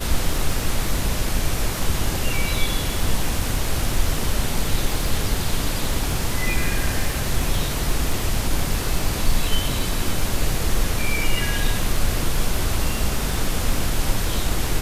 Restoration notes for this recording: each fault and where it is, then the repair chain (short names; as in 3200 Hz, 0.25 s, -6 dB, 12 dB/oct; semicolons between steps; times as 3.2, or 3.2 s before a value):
crackle 28/s -25 dBFS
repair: de-click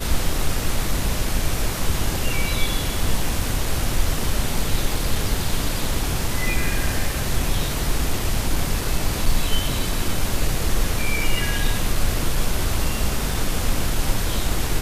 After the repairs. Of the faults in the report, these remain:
none